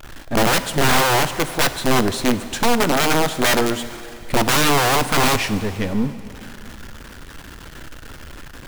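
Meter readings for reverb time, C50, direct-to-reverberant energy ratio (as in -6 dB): 2.7 s, 12.0 dB, 11.0 dB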